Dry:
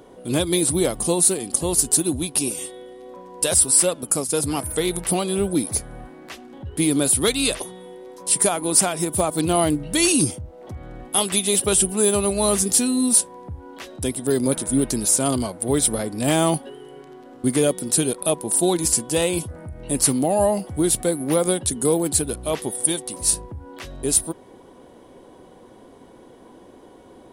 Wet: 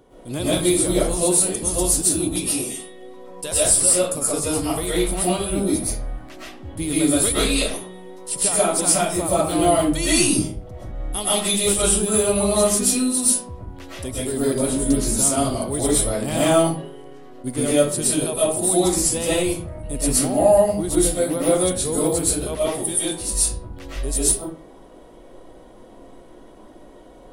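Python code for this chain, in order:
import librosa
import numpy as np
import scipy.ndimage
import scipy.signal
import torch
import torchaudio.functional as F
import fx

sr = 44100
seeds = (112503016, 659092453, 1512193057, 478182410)

y = fx.low_shelf(x, sr, hz=84.0, db=10.5)
y = fx.rev_freeverb(y, sr, rt60_s=0.46, hf_ratio=0.7, predelay_ms=85, drr_db=-9.0)
y = fx.attack_slew(y, sr, db_per_s=320.0)
y = F.gain(torch.from_numpy(y), -8.0).numpy()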